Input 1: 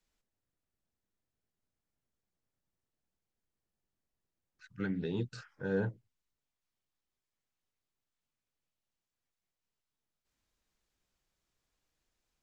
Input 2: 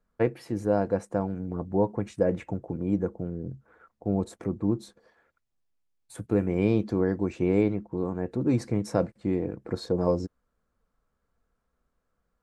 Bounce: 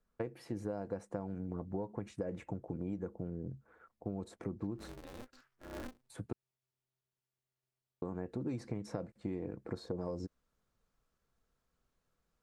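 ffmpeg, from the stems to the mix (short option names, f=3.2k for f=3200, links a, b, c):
-filter_complex "[0:a]aeval=exprs='val(0)*sgn(sin(2*PI*130*n/s))':c=same,volume=-5.5dB,afade=t=in:st=5.75:d=0.3:silence=0.354813[a];[1:a]acrossover=split=1300|5400[b][c][d];[b]acompressor=threshold=-24dB:ratio=4[e];[c]acompressor=threshold=-48dB:ratio=4[f];[d]acompressor=threshold=-56dB:ratio=4[g];[e][f][g]amix=inputs=3:normalize=0,volume=-5.5dB,asplit=3[h][i][j];[h]atrim=end=6.33,asetpts=PTS-STARTPTS,afade=t=out:st=6.326:d=0.004:c=hsin[k];[i]atrim=start=6.33:end=8.02,asetpts=PTS-STARTPTS,volume=0[l];[j]atrim=start=8.02,asetpts=PTS-STARTPTS,afade=t=in:d=0.004:c=hsin[m];[k][l][m]concat=n=3:v=0:a=1[n];[a][n]amix=inputs=2:normalize=0,acompressor=threshold=-35dB:ratio=4"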